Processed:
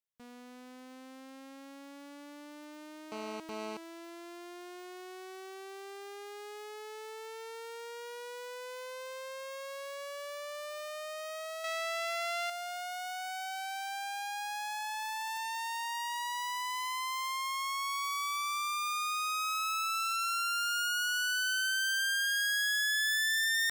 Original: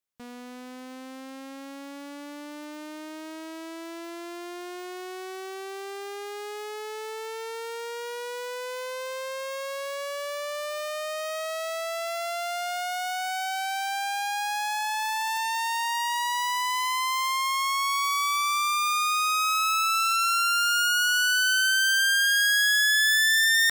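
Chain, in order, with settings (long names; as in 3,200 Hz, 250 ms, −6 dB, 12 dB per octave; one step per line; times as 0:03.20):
0:03.12–0:03.77: phone interference −32 dBFS
0:11.64–0:12.50: drawn EQ curve 440 Hz 0 dB, 2,200 Hz +10 dB, 14,000 Hz +1 dB
level −9 dB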